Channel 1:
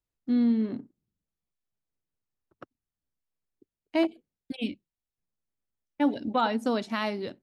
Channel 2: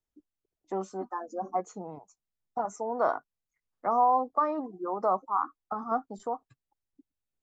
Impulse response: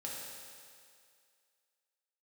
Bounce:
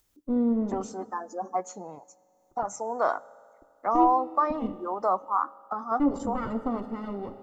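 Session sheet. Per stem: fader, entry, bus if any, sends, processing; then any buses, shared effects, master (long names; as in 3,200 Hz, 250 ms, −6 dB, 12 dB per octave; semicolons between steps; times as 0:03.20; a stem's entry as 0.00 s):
−1.5 dB, 0.00 s, send −5 dB, lower of the sound and its delayed copy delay 0.64 ms; Savitzky-Golay smoothing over 65 samples
+1.5 dB, 0.00 s, send −19 dB, spectral tilt +2 dB per octave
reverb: on, RT60 2.2 s, pre-delay 3 ms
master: upward compression, threshold −59 dBFS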